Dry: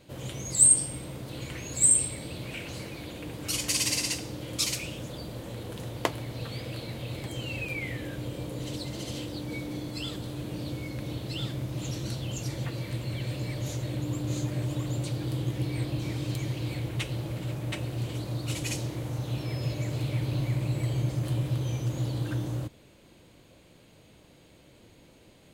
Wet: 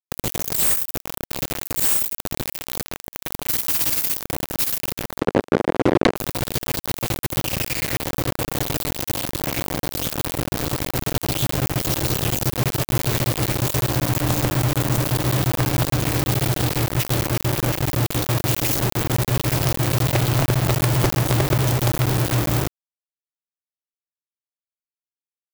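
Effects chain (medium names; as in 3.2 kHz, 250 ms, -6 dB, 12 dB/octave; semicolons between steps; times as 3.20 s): bass shelf 360 Hz +7 dB; in parallel at +2 dB: compression 8:1, threshold -37 dBFS, peak gain reduction 22 dB; on the sum: bit crusher 4-bit; 5.20–6.16 s: band-pass filter 400 Hz, Q 0.95; sine folder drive 17 dB, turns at -7 dBFS; trim -1 dB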